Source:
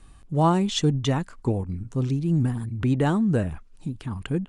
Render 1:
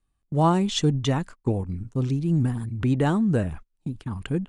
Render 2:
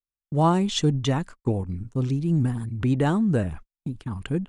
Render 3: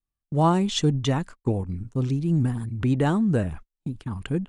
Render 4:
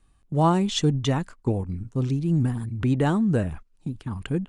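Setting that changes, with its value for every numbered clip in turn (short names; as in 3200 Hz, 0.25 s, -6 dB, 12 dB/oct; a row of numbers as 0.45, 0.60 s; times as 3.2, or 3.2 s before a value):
gate, range: -25, -53, -39, -12 dB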